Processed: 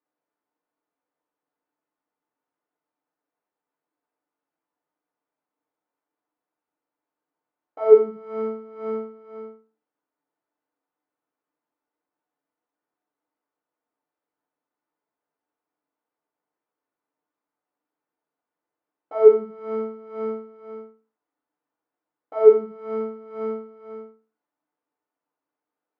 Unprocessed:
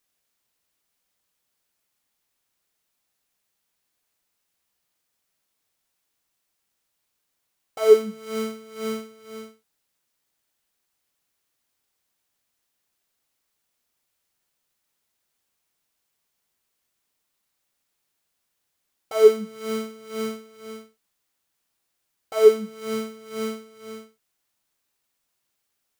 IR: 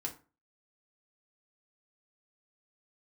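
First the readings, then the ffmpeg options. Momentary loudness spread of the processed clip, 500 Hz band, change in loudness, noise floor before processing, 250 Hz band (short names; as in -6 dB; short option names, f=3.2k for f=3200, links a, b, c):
24 LU, +1.5 dB, +1.5 dB, -77 dBFS, -3.0 dB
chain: -filter_complex "[0:a]asuperpass=centerf=540:order=4:qfactor=0.53[a];[1:a]atrim=start_sample=2205[b];[a][b]afir=irnorm=-1:irlink=0"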